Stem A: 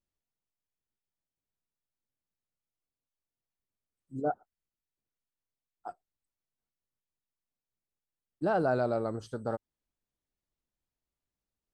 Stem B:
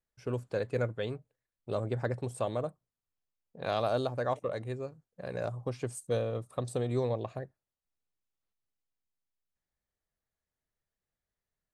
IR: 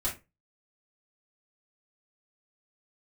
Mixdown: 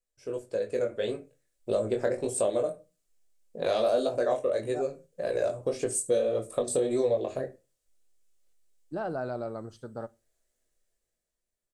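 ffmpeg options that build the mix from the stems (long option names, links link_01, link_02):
-filter_complex "[0:a]adelay=500,volume=-5.5dB,asplit=2[link_01][link_02];[link_02]volume=-20dB[link_03];[1:a]equalizer=frequency=125:width_type=o:width=1:gain=-11,equalizer=frequency=500:width_type=o:width=1:gain=8,equalizer=frequency=1000:width_type=o:width=1:gain=-7,equalizer=frequency=8000:width_type=o:width=1:gain=10,dynaudnorm=framelen=140:gausssize=13:maxgain=11.5dB,flanger=delay=18:depth=4.7:speed=1.7,volume=-2dB,asplit=2[link_04][link_05];[link_05]volume=-10.5dB[link_06];[2:a]atrim=start_sample=2205[link_07];[link_03][link_06]amix=inputs=2:normalize=0[link_08];[link_08][link_07]afir=irnorm=-1:irlink=0[link_09];[link_01][link_04][link_09]amix=inputs=3:normalize=0,acompressor=threshold=-28dB:ratio=2"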